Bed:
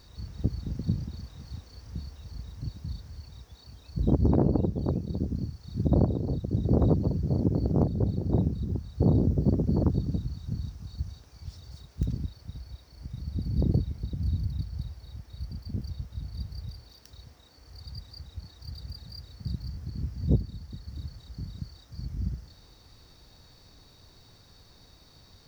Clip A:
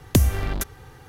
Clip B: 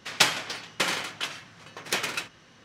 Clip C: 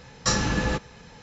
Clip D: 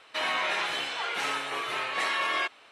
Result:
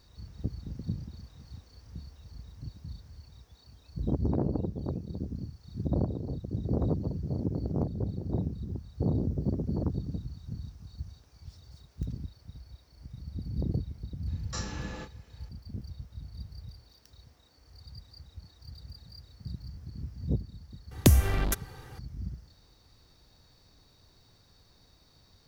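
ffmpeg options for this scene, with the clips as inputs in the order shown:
ffmpeg -i bed.wav -i cue0.wav -i cue1.wav -i cue2.wav -filter_complex "[0:a]volume=-6dB[link_01];[3:a]asplit=2[link_02][link_03];[link_03]adelay=30,volume=-6.5dB[link_04];[link_02][link_04]amix=inputs=2:normalize=0,atrim=end=1.22,asetpts=PTS-STARTPTS,volume=-15.5dB,afade=type=in:duration=0.004:curve=hsin,afade=type=out:start_time=1.216:duration=0.004:curve=hsin,adelay=14270[link_05];[1:a]atrim=end=1.08,asetpts=PTS-STARTPTS,volume=-2dB,afade=type=in:duration=0.004:curve=hsin,afade=type=out:start_time=1.076:duration=0.004:curve=hsin,adelay=20910[link_06];[link_01][link_05][link_06]amix=inputs=3:normalize=0" out.wav

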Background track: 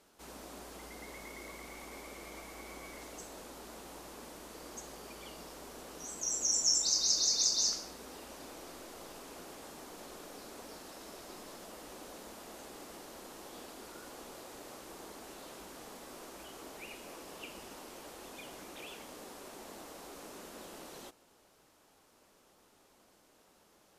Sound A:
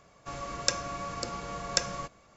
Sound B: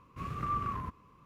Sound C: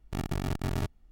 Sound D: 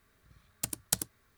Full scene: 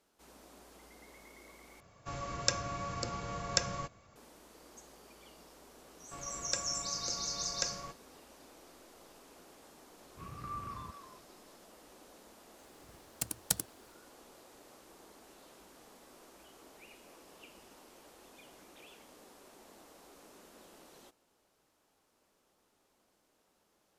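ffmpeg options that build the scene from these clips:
ffmpeg -i bed.wav -i cue0.wav -i cue1.wav -i cue2.wav -i cue3.wav -filter_complex "[1:a]asplit=2[link_01][link_02];[0:a]volume=-8.5dB[link_03];[link_01]equalizer=frequency=100:width_type=o:width=0.77:gain=9[link_04];[2:a]asplit=2[link_05][link_06];[link_06]adelay=270,highpass=300,lowpass=3400,asoftclip=type=hard:threshold=-32.5dB,volume=-7dB[link_07];[link_05][link_07]amix=inputs=2:normalize=0[link_08];[link_03]asplit=2[link_09][link_10];[link_09]atrim=end=1.804[link_11];[link_04]atrim=end=2.36,asetpts=PTS-STARTPTS,volume=-3dB[link_12];[link_10]atrim=start=4.156[link_13];[link_02]atrim=end=2.36,asetpts=PTS-STARTPTS,volume=-8.5dB,afade=type=in:duration=0.004:curve=hsin,afade=type=out:start_time=2.356:duration=0.004:curve=hsin,adelay=257985S[link_14];[link_08]atrim=end=1.25,asetpts=PTS-STARTPTS,volume=-9dB,afade=type=in:duration=0.004:curve=hsin,afade=type=out:start_time=1.246:duration=0.004:curve=hsin,adelay=10010[link_15];[4:a]atrim=end=1.37,asetpts=PTS-STARTPTS,volume=-2dB,afade=type=in:duration=0.004:curve=hsin,afade=type=out:start_time=1.366:duration=0.004:curve=hsin,adelay=12580[link_16];[link_11][link_12]acrossfade=duration=0.004:curve1=hsin:curve2=hsin[link_17];[link_17][link_13]acrossfade=duration=0.004:curve1=hsin:curve2=hsin[link_18];[link_18][link_14][link_15][link_16]amix=inputs=4:normalize=0" out.wav

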